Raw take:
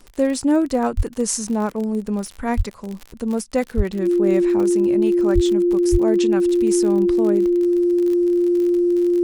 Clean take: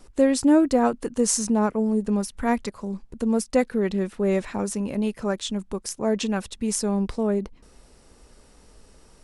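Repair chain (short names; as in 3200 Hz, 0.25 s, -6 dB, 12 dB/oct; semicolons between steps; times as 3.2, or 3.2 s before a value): de-click; notch 350 Hz, Q 30; de-plosive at 0.96/2.56/3.76/5.34/5.91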